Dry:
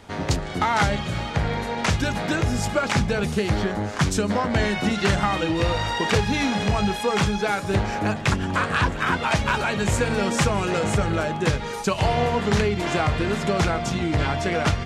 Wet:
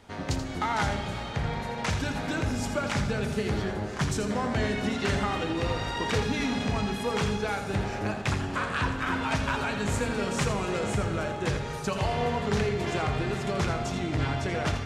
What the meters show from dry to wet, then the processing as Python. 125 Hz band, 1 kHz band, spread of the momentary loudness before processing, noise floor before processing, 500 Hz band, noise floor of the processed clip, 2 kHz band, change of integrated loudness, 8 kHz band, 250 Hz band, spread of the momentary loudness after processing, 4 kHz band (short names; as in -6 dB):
-6.0 dB, -6.5 dB, 3 LU, -31 dBFS, -6.0 dB, -35 dBFS, -6.5 dB, -6.0 dB, -6.5 dB, -5.5 dB, 3 LU, -6.5 dB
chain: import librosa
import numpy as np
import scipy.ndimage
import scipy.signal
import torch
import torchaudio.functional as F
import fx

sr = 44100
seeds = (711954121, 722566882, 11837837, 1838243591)

p1 = x + fx.echo_single(x, sr, ms=83, db=-9.0, dry=0)
p2 = fx.rev_fdn(p1, sr, rt60_s=4.0, lf_ratio=1.0, hf_ratio=0.55, size_ms=23.0, drr_db=8.0)
y = p2 * 10.0 ** (-7.5 / 20.0)